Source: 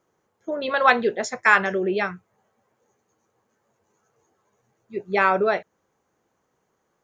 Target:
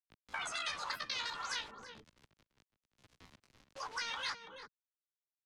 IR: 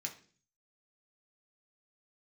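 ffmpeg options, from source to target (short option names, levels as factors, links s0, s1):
-filter_complex "[0:a]acrusher=bits=9:mix=0:aa=0.000001,areverse,acompressor=threshold=0.0562:ratio=20,areverse,alimiter=limit=0.0841:level=0:latency=1:release=146,asetrate=83250,aresample=44100,atempo=0.529732,bass=f=250:g=11,treble=f=4000:g=1,afftfilt=real='re*lt(hypot(re,im),0.1)':imag='im*lt(hypot(re,im),0.1)':win_size=1024:overlap=0.75,asetrate=56889,aresample=44100,acrossover=split=190[s0][s1];[s1]acompressor=threshold=0.00316:ratio=4[s2];[s0][s2]amix=inputs=2:normalize=0,asplit=2[s3][s4];[s4]adelay=332.4,volume=0.251,highshelf=f=4000:g=-7.48[s5];[s3][s5]amix=inputs=2:normalize=0,acrossover=split=700[s6][s7];[s6]aeval=exprs='(mod(1260*val(0)+1,2)-1)/1260':c=same[s8];[s8][s7]amix=inputs=2:normalize=0,lowpass=5800,volume=4.22"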